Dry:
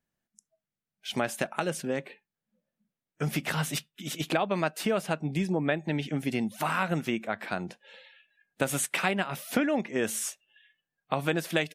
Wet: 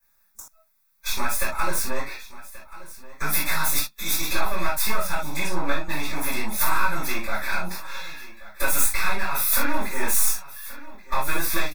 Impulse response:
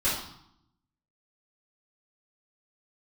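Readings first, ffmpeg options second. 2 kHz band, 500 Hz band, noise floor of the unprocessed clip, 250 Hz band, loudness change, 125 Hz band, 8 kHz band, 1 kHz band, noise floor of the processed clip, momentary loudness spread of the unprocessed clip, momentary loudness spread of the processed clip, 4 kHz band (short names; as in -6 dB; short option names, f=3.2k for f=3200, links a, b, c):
+6.0 dB, -3.0 dB, under -85 dBFS, -4.5 dB, +5.0 dB, -3.5 dB, +10.0 dB, +5.5 dB, -64 dBFS, 8 LU, 22 LU, +5.5 dB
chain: -filter_complex "[0:a]aeval=exprs='if(lt(val(0),0),0.251*val(0),val(0))':c=same,equalizer=f=4.5k:w=1.5:g=3,acrossover=split=340[a][b];[a]asoftclip=type=tanh:threshold=-34.5dB[c];[b]acompressor=threshold=-42dB:ratio=6[d];[c][d]amix=inputs=2:normalize=0,equalizer=f=125:t=o:w=1:g=-11,equalizer=f=250:t=o:w=1:g=-4,equalizer=f=500:t=o:w=1:g=-3,equalizer=f=1k:t=o:w=1:g=9,equalizer=f=4k:t=o:w=1:g=-6,equalizer=f=8k:t=o:w=1:g=-7,crystalizer=i=8.5:c=0,asuperstop=centerf=3000:order=12:qfactor=5,aecho=1:1:1131:0.133[e];[1:a]atrim=start_sample=2205,atrim=end_sample=3969[f];[e][f]afir=irnorm=-1:irlink=0"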